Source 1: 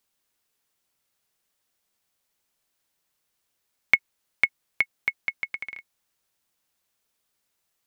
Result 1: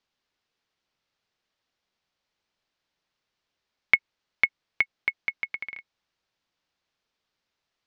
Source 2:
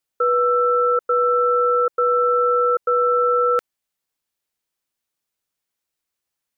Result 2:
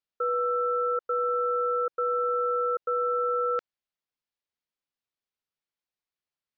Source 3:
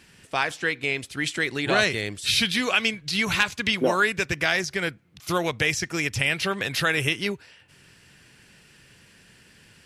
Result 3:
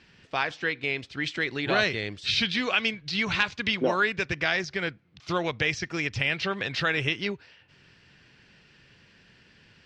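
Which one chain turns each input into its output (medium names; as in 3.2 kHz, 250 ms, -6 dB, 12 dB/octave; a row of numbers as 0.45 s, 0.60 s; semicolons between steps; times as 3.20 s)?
low-pass 5.2 kHz 24 dB/octave; normalise loudness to -27 LUFS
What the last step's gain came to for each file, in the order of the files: 0.0 dB, -9.0 dB, -3.0 dB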